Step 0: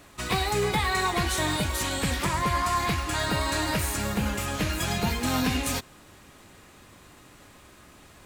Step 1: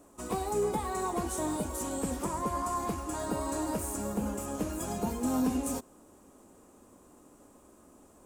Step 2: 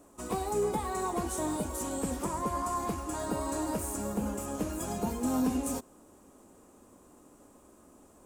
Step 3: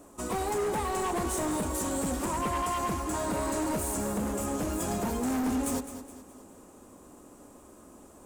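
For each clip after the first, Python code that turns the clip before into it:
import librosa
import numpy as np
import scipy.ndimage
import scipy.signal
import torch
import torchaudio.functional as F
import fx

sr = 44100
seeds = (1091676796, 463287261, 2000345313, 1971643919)

y1 = fx.graphic_eq(x, sr, hz=(125, 250, 500, 1000, 2000, 4000, 8000), db=(-7, 9, 6, 4, -11, -11, 7))
y1 = y1 * 10.0 ** (-9.0 / 20.0)
y2 = y1
y3 = np.clip(y2, -10.0 ** (-32.5 / 20.0), 10.0 ** (-32.5 / 20.0))
y3 = fx.echo_feedback(y3, sr, ms=209, feedback_pct=42, wet_db=-11.5)
y3 = y3 * 10.0 ** (5.0 / 20.0)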